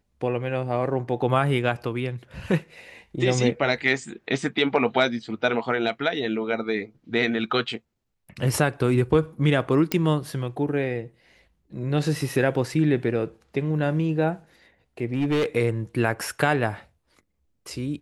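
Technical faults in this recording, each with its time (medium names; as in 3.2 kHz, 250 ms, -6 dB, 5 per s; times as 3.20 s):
9.92 s: pop -7 dBFS
15.13–15.46 s: clipped -19 dBFS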